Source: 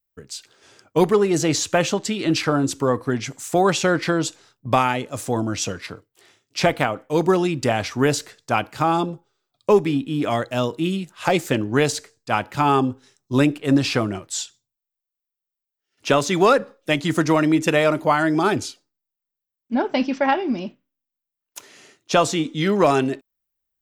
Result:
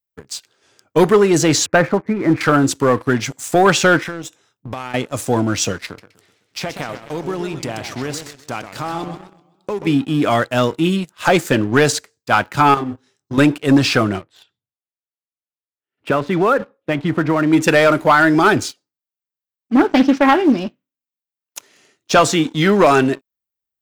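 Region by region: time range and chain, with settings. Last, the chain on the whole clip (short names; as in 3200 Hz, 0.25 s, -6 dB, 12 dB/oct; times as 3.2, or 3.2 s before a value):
1.66–2.41 steep low-pass 2300 Hz 96 dB/oct + mismatched tape noise reduction decoder only
4.01–4.94 compressor 4:1, threshold -32 dBFS + Butterworth band-stop 4500 Hz, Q 5.1
5.85–9.87 compressor 3:1, threshold -31 dBFS + warbling echo 0.127 s, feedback 53%, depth 173 cents, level -8.5 dB
12.74–13.38 high shelf 4200 Hz -5.5 dB + compressor 4:1, threshold -28 dBFS + doubler 28 ms -4 dB
14.21–17.53 compressor 2:1, threshold -19 dBFS + air absorption 480 m
19.75–20.57 bell 300 Hz +12 dB 0.28 oct + Doppler distortion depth 0.24 ms
whole clip: HPF 53 Hz; dynamic EQ 1500 Hz, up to +6 dB, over -37 dBFS, Q 2.2; sample leveller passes 2; gain -1.5 dB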